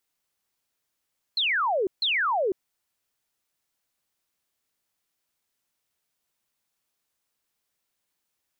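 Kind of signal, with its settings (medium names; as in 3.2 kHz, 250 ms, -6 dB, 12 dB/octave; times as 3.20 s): burst of laser zaps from 4.3 kHz, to 350 Hz, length 0.50 s sine, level -21.5 dB, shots 2, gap 0.15 s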